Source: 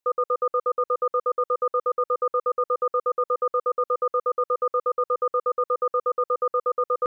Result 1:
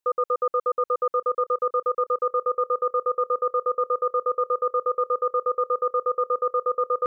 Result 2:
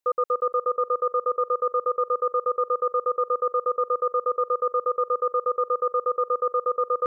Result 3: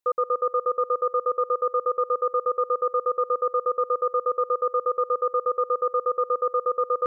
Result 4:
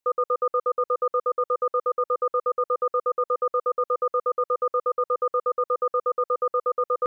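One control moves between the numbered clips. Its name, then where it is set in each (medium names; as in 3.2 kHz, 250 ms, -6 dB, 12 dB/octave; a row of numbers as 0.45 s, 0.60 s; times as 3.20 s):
filtered feedback delay, time: 1108 ms, 286 ms, 176 ms, 601 ms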